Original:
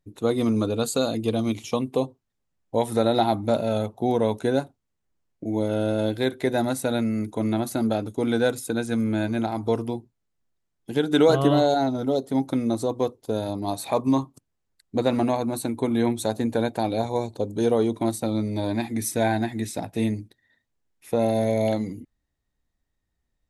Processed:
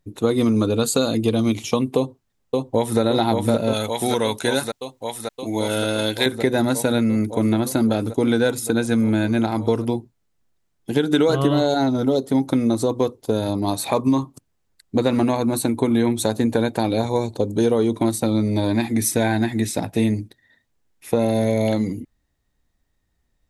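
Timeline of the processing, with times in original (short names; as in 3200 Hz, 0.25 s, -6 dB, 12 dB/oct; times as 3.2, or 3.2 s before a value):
1.96–3 echo throw 0.57 s, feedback 80%, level -4 dB
3.73–6.26 tilt shelf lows -8 dB
whole clip: dynamic EQ 700 Hz, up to -6 dB, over -36 dBFS, Q 2.7; compressor 4:1, threshold -22 dBFS; gain +7.5 dB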